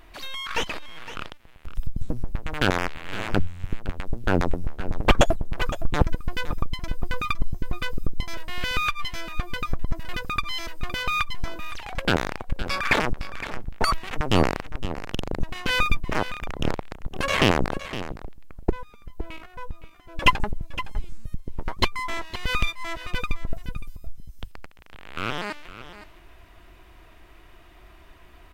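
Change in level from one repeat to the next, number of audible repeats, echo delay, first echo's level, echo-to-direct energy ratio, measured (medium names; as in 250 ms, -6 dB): no regular repeats, 1, 513 ms, -13.5 dB, -13.5 dB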